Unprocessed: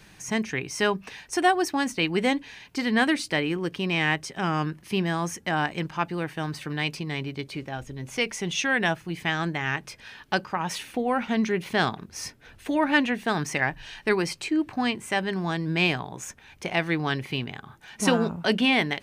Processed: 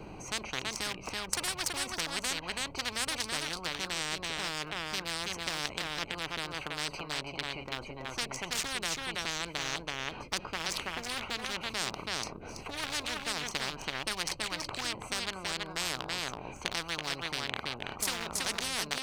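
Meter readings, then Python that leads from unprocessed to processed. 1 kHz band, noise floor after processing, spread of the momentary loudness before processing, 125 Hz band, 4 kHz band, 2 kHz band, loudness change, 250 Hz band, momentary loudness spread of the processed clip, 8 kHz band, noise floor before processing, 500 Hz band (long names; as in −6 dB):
−10.0 dB, −46 dBFS, 12 LU, −14.5 dB, −1.5 dB, −8.5 dB, −8.0 dB, −18.0 dB, 4 LU, +1.5 dB, −53 dBFS, −13.5 dB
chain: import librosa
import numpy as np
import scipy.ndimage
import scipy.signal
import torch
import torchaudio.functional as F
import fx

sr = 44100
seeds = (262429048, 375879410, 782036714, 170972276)

y = fx.wiener(x, sr, points=25)
y = y + 10.0 ** (-7.5 / 20.0) * np.pad(y, (int(329 * sr / 1000.0), 0))[:len(y)]
y = fx.spectral_comp(y, sr, ratio=10.0)
y = y * 10.0 ** (-2.5 / 20.0)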